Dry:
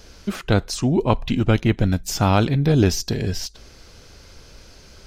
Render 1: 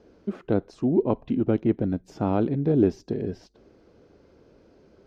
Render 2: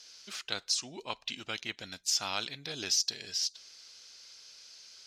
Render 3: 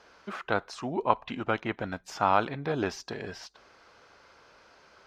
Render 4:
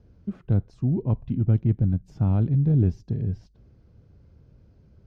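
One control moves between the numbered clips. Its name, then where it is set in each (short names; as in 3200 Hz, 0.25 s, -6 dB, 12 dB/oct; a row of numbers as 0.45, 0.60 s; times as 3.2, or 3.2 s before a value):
band-pass, frequency: 340, 5000, 1100, 120 Hz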